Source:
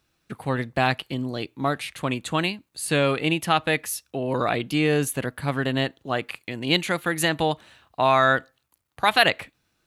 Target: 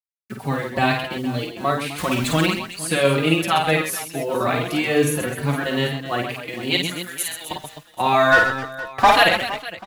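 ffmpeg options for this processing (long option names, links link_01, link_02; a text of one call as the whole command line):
ffmpeg -i in.wav -filter_complex "[0:a]asettb=1/sr,asplit=3[link_01][link_02][link_03];[link_01]atrim=end=1.984[link_04];[link_02]atrim=start=1.98:end=2.46,asetpts=PTS-STARTPTS,afade=type=in:duration=0.004:curve=qsin,afade=type=out:start_time=0.476:duration=0.004:curve=qsin,aeval=exprs='val(0)+0.5*0.0422*sgn(val(0))':channel_layout=same[link_05];[link_03]atrim=start=2.456[link_06];[link_04][link_05]acrossfade=duration=0.004:curve1=hsin:curve2=qsin[link_07];[link_07][link_06]acrossfade=duration=0.004:curve1=qsin:curve2=hsin,asettb=1/sr,asplit=3[link_08][link_09][link_10];[link_08]atrim=end=6.824[link_11];[link_09]atrim=start=6.82:end=7.51,asetpts=PTS-STARTPTS,afade=type=in:duration=0.004:curve=qsin,afade=type=out:start_time=0.686:duration=0.004:curve=qsin,aderivative[link_12];[link_10]atrim=start=7.506[link_13];[link_11][link_12]acrossfade=duration=0.004:curve1=hsin:curve2=qsin[link_14];[link_14][link_13]acrossfade=duration=0.004:curve1=qsin:curve2=hsin,acrusher=bits=7:mix=0:aa=0.000001,asplit=3[link_15][link_16][link_17];[link_15]afade=type=out:start_time=8.31:duration=0.02[link_18];[link_16]asplit=2[link_19][link_20];[link_20]highpass=frequency=720:poles=1,volume=29dB,asoftclip=type=tanh:threshold=-5.5dB[link_21];[link_19][link_21]amix=inputs=2:normalize=0,lowpass=frequency=1400:poles=1,volume=-6dB,afade=type=in:start_time=8.31:duration=0.02,afade=type=out:start_time=9.15:duration=0.02[link_22];[link_17]afade=type=in:start_time=9.15:duration=0.02[link_23];[link_18][link_22][link_23]amix=inputs=3:normalize=0,asplit=2[link_24][link_25];[link_25]aecho=0:1:50|130|258|462.8|790.5:0.631|0.398|0.251|0.158|0.1[link_26];[link_24][link_26]amix=inputs=2:normalize=0,asplit=2[link_27][link_28];[link_28]adelay=4.6,afreqshift=2.2[link_29];[link_27][link_29]amix=inputs=2:normalize=1,volume=4dB" out.wav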